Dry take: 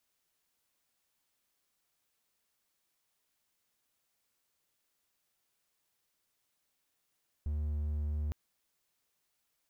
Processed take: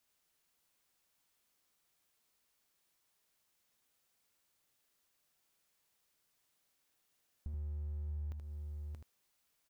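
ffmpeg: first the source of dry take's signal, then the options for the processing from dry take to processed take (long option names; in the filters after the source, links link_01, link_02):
-f lavfi -i "aevalsrc='0.0335*(1-4*abs(mod(74.7*t+0.25,1)-0.5))':duration=0.86:sample_rate=44100"
-filter_complex "[0:a]asplit=2[link_01][link_02];[link_02]aecho=0:1:628:0.282[link_03];[link_01][link_03]amix=inputs=2:normalize=0,acompressor=threshold=-41dB:ratio=6,asplit=2[link_04][link_05];[link_05]aecho=0:1:78:0.501[link_06];[link_04][link_06]amix=inputs=2:normalize=0"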